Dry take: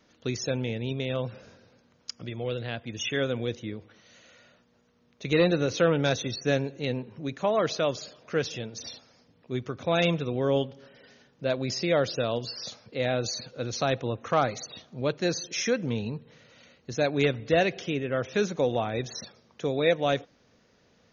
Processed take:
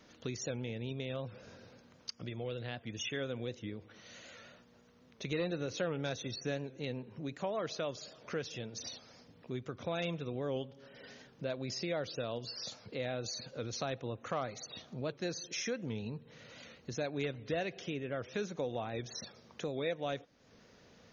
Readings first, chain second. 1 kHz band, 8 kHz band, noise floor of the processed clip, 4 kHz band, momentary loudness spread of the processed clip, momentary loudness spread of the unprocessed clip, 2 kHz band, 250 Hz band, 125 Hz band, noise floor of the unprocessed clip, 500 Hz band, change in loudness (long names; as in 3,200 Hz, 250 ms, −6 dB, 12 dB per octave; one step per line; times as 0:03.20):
−11.5 dB, can't be measured, −63 dBFS, −9.0 dB, 14 LU, 13 LU, −11.0 dB, −10.5 dB, −10.0 dB, −64 dBFS, −11.5 dB, −11.0 dB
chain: downward compressor 2 to 1, threshold −48 dBFS, peak gain reduction 16.5 dB
wow of a warped record 78 rpm, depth 100 cents
level +2.5 dB